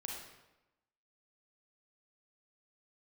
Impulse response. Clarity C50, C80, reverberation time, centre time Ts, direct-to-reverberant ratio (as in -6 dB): 1.0 dB, 4.0 dB, 1.0 s, 58 ms, -1.5 dB